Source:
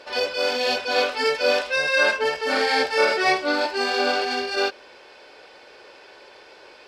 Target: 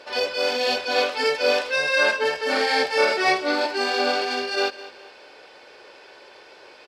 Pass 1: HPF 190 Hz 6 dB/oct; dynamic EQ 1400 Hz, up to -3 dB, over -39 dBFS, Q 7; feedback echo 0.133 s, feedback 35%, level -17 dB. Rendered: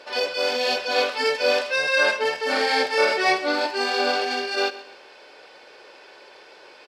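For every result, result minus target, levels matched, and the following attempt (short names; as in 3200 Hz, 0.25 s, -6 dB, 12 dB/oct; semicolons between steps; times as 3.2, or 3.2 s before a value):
echo 74 ms early; 125 Hz band -3.0 dB
HPF 190 Hz 6 dB/oct; dynamic EQ 1400 Hz, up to -3 dB, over -39 dBFS, Q 7; feedback echo 0.207 s, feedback 35%, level -17 dB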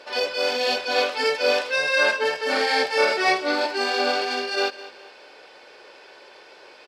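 125 Hz band -3.0 dB
HPF 78 Hz 6 dB/oct; dynamic EQ 1400 Hz, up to -3 dB, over -39 dBFS, Q 7; feedback echo 0.207 s, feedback 35%, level -17 dB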